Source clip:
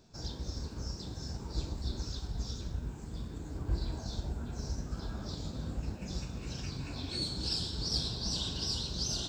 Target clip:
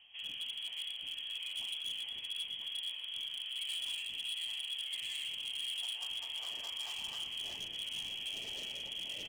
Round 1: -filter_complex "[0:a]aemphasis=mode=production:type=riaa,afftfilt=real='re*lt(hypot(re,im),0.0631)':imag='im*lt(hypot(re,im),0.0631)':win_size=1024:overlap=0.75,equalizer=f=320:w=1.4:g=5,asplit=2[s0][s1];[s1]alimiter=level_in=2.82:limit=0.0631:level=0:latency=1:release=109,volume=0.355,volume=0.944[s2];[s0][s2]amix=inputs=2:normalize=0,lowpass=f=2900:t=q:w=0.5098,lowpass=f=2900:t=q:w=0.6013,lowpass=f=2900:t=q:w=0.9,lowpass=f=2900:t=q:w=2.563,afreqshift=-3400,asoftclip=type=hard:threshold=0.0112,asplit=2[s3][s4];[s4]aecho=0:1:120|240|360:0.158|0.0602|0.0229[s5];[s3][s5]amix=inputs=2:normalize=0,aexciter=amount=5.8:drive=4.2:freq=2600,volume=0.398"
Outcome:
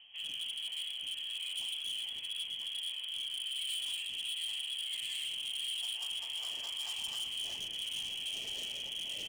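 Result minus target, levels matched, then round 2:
250 Hz band -2.5 dB
-filter_complex "[0:a]aemphasis=mode=production:type=riaa,afftfilt=real='re*lt(hypot(re,im),0.0631)':imag='im*lt(hypot(re,im),0.0631)':win_size=1024:overlap=0.75,equalizer=f=320:w=1.4:g=-2,asplit=2[s0][s1];[s1]alimiter=level_in=2.82:limit=0.0631:level=0:latency=1:release=109,volume=0.355,volume=0.944[s2];[s0][s2]amix=inputs=2:normalize=0,lowpass=f=2900:t=q:w=0.5098,lowpass=f=2900:t=q:w=0.6013,lowpass=f=2900:t=q:w=0.9,lowpass=f=2900:t=q:w=2.563,afreqshift=-3400,asoftclip=type=hard:threshold=0.0112,asplit=2[s3][s4];[s4]aecho=0:1:120|240|360:0.158|0.0602|0.0229[s5];[s3][s5]amix=inputs=2:normalize=0,aexciter=amount=5.8:drive=4.2:freq=2600,volume=0.398"

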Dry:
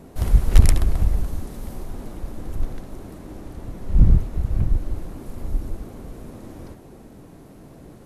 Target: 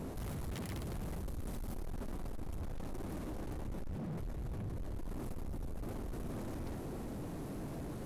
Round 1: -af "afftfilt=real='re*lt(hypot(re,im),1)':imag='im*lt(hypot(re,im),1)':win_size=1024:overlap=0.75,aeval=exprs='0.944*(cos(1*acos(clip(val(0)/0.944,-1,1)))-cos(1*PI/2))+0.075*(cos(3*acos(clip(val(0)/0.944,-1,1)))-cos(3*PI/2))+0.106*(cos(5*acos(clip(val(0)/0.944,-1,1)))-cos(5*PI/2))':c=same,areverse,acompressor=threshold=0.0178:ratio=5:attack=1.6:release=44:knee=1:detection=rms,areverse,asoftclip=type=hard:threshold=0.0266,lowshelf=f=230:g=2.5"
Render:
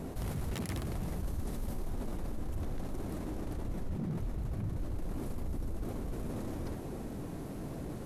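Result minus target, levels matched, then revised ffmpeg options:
hard clipper: distortion -21 dB
-af "afftfilt=real='re*lt(hypot(re,im),1)':imag='im*lt(hypot(re,im),1)':win_size=1024:overlap=0.75,aeval=exprs='0.944*(cos(1*acos(clip(val(0)/0.944,-1,1)))-cos(1*PI/2))+0.075*(cos(3*acos(clip(val(0)/0.944,-1,1)))-cos(3*PI/2))+0.106*(cos(5*acos(clip(val(0)/0.944,-1,1)))-cos(5*PI/2))':c=same,areverse,acompressor=threshold=0.0178:ratio=5:attack=1.6:release=44:knee=1:detection=rms,areverse,asoftclip=type=hard:threshold=0.01,lowshelf=f=230:g=2.5"

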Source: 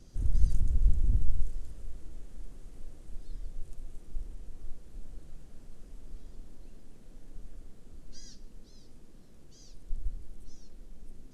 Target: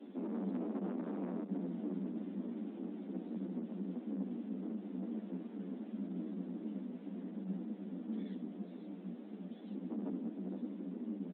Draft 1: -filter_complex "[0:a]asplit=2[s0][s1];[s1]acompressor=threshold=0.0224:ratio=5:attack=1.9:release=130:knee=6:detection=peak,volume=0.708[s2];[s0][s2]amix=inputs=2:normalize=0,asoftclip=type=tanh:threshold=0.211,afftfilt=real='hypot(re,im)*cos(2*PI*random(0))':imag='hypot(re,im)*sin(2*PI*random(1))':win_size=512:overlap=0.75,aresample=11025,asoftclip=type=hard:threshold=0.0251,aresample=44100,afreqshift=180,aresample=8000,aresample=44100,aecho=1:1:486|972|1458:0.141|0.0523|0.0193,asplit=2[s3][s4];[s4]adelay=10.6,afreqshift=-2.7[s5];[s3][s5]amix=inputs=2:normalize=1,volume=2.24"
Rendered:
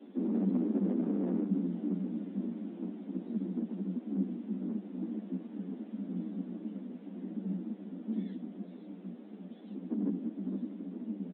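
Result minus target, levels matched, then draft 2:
hard clipper: distortion -5 dB
-filter_complex "[0:a]asplit=2[s0][s1];[s1]acompressor=threshold=0.0224:ratio=5:attack=1.9:release=130:knee=6:detection=peak,volume=0.708[s2];[s0][s2]amix=inputs=2:normalize=0,asoftclip=type=tanh:threshold=0.211,afftfilt=real='hypot(re,im)*cos(2*PI*random(0))':imag='hypot(re,im)*sin(2*PI*random(1))':win_size=512:overlap=0.75,aresample=11025,asoftclip=type=hard:threshold=0.00794,aresample=44100,afreqshift=180,aresample=8000,aresample=44100,aecho=1:1:486|972|1458:0.141|0.0523|0.0193,asplit=2[s3][s4];[s4]adelay=10.6,afreqshift=-2.7[s5];[s3][s5]amix=inputs=2:normalize=1,volume=2.24"

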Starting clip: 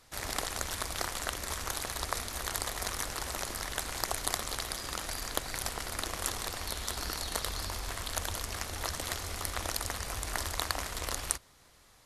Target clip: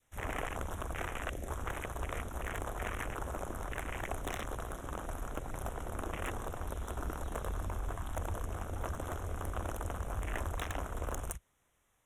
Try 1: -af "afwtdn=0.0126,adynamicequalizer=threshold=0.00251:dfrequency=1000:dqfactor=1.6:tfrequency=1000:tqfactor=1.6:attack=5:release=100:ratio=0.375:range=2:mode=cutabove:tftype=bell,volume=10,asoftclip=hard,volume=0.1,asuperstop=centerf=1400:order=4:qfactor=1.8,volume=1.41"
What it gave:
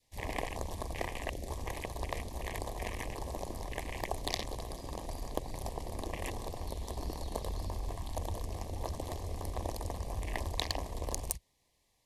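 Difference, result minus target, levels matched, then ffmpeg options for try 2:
4 kHz band +7.5 dB; overload inside the chain: distortion -8 dB
-af "afwtdn=0.0126,adynamicequalizer=threshold=0.00251:dfrequency=1000:dqfactor=1.6:tfrequency=1000:tqfactor=1.6:attack=5:release=100:ratio=0.375:range=2:mode=cutabove:tftype=bell,volume=37.6,asoftclip=hard,volume=0.0266,asuperstop=centerf=4600:order=4:qfactor=1.8,volume=1.41"

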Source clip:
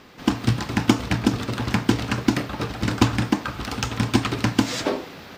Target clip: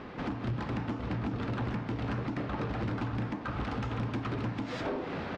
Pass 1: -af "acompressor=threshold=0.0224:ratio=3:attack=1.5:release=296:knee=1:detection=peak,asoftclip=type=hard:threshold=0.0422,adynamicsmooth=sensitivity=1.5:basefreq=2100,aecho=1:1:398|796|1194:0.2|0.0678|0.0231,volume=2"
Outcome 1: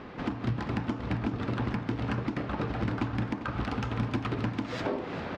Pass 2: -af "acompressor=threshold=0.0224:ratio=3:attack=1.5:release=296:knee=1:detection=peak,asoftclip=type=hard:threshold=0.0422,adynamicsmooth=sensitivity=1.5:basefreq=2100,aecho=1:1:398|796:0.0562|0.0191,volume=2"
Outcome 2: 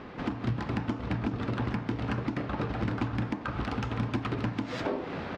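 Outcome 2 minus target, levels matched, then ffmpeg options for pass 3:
hard clipper: distortion -8 dB
-af "acompressor=threshold=0.0224:ratio=3:attack=1.5:release=296:knee=1:detection=peak,asoftclip=type=hard:threshold=0.0188,adynamicsmooth=sensitivity=1.5:basefreq=2100,aecho=1:1:398|796:0.0562|0.0191,volume=2"

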